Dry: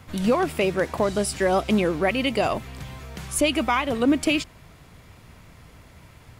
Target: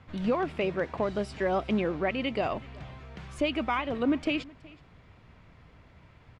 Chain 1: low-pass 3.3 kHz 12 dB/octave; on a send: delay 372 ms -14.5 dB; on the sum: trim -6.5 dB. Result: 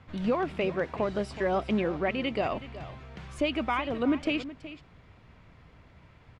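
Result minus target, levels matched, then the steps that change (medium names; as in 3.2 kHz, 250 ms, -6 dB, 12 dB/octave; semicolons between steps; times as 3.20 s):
echo-to-direct +8.5 dB
change: delay 372 ms -23 dB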